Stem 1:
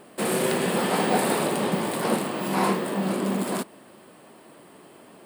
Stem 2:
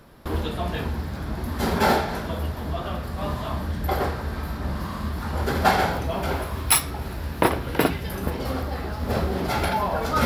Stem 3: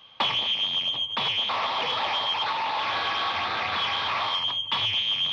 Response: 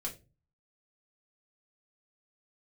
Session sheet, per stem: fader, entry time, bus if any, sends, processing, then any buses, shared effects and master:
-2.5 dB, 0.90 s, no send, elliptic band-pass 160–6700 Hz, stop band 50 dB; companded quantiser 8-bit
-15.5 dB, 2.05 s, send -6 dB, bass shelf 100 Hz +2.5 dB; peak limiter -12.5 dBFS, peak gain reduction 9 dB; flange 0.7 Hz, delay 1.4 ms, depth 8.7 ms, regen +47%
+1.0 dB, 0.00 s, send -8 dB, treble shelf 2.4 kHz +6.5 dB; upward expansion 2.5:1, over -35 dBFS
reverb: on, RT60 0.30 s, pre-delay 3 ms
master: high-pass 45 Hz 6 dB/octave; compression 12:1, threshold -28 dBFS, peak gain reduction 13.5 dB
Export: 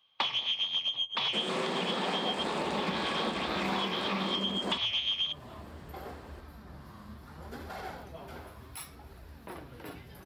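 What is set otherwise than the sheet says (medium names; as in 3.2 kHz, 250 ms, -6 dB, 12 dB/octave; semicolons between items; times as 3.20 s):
stem 1: entry 0.90 s -> 1.15 s; reverb return -8.5 dB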